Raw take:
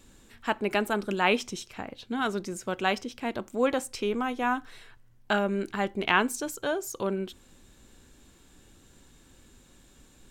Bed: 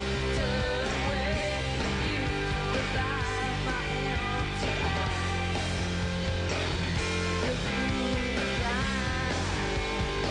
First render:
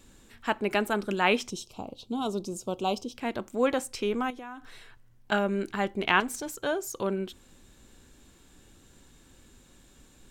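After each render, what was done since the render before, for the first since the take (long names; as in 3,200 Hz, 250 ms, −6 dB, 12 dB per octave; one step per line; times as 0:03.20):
0:01.50–0:03.15: Butterworth band-reject 1,800 Hz, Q 0.86
0:04.30–0:05.32: downward compressor 5 to 1, threshold −39 dBFS
0:06.20–0:06.62: tube saturation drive 28 dB, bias 0.35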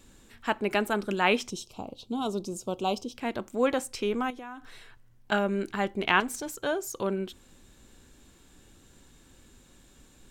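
no processing that can be heard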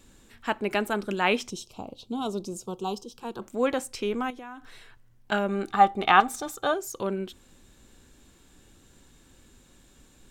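0:02.66–0:03.42: phaser with its sweep stopped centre 410 Hz, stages 8
0:05.49–0:06.74: hollow resonant body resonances 790/1,200/3,600 Hz, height 17 dB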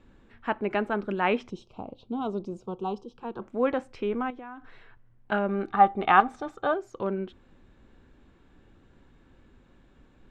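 low-pass filter 2,000 Hz 12 dB per octave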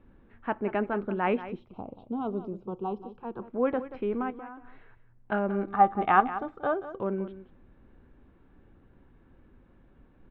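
high-frequency loss of the air 500 metres
single-tap delay 182 ms −13.5 dB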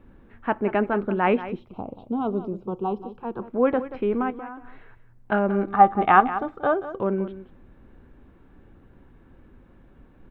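level +6 dB
brickwall limiter −3 dBFS, peak gain reduction 1.5 dB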